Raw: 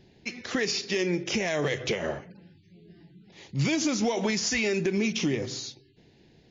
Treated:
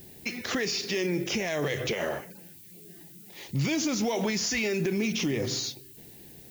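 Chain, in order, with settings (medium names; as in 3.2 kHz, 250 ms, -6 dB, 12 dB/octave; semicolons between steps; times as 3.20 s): 1.93–3.49 s: bass shelf 240 Hz -10.5 dB; peak limiter -25.5 dBFS, peak gain reduction 7.5 dB; added noise violet -56 dBFS; trim +5 dB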